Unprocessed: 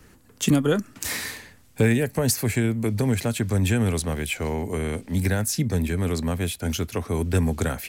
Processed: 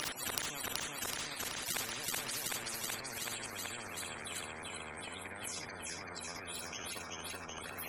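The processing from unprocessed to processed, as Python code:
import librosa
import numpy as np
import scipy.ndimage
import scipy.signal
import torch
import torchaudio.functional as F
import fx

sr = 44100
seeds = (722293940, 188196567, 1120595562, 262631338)

p1 = x + 0.5 * 10.0 ** (-26.0 / 20.0) * np.sign(x)
p2 = fx.highpass(p1, sr, hz=770.0, slope=6)
p3 = fx.high_shelf(p2, sr, hz=5500.0, db=-2.5)
p4 = fx.spec_topn(p3, sr, count=32)
p5 = fx.gate_flip(p4, sr, shuts_db=-32.0, range_db=-42)
p6 = p5 + fx.echo_feedback(p5, sr, ms=378, feedback_pct=55, wet_db=-6.0, dry=0)
p7 = fx.rev_gated(p6, sr, seeds[0], gate_ms=90, shape='rising', drr_db=10.0)
p8 = fx.transient(p7, sr, attack_db=7, sustain_db=11)
p9 = fx.spectral_comp(p8, sr, ratio=10.0)
y = F.gain(torch.from_numpy(p9), 16.5).numpy()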